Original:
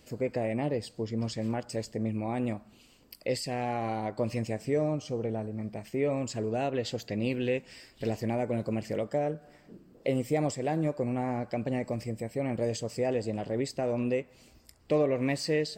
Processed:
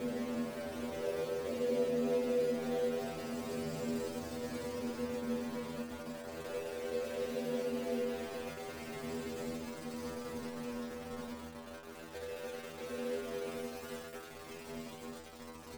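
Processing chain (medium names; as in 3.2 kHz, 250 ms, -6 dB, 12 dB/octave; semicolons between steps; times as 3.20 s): delay with an opening low-pass 175 ms, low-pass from 750 Hz, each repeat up 2 oct, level 0 dB; Paulstretch 32×, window 0.05 s, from 14.26 s; small samples zeroed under -30 dBFS; inharmonic resonator 79 Hz, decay 0.51 s, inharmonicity 0.002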